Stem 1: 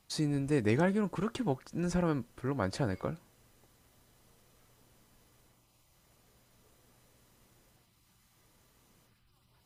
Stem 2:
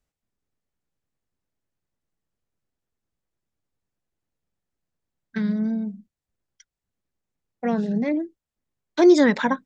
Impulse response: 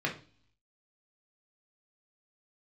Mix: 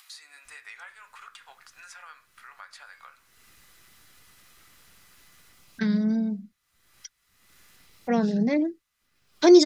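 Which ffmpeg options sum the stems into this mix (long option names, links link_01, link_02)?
-filter_complex "[0:a]highpass=frequency=1200:width=0.5412,highpass=frequency=1200:width=1.3066,volume=-13.5dB,asplit=2[link_01][link_02];[link_02]volume=-8dB[link_03];[1:a]equalizer=frequency=5100:width=1.8:gain=10,adelay=450,volume=0dB[link_04];[2:a]atrim=start_sample=2205[link_05];[link_03][link_05]afir=irnorm=-1:irlink=0[link_06];[link_01][link_04][link_06]amix=inputs=3:normalize=0,acompressor=mode=upward:threshold=-37dB:ratio=2.5"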